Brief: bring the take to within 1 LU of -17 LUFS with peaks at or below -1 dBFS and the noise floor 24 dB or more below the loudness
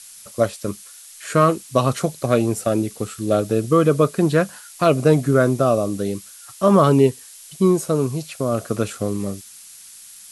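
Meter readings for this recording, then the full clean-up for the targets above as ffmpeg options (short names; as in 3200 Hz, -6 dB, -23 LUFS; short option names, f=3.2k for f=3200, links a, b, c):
noise floor -43 dBFS; noise floor target -44 dBFS; loudness -19.5 LUFS; peak -2.5 dBFS; loudness target -17.0 LUFS
-> -af "afftdn=nr=6:nf=-43"
-af "volume=2.5dB,alimiter=limit=-1dB:level=0:latency=1"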